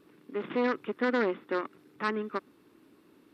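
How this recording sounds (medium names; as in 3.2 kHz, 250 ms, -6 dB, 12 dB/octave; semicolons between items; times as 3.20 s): noise floor -62 dBFS; spectral tilt -3.5 dB/octave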